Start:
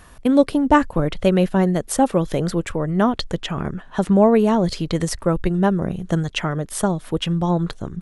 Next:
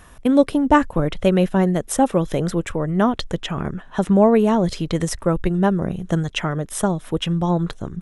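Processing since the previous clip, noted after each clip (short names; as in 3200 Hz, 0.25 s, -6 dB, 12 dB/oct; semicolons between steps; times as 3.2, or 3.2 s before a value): notch 4500 Hz, Q 7.7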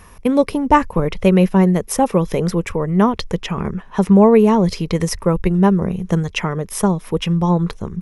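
ripple EQ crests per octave 0.84, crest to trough 7 dB; gain +2 dB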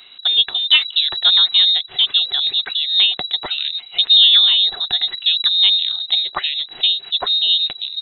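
inverted band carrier 3900 Hz; small resonant body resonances 390/730 Hz, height 10 dB; gain -1 dB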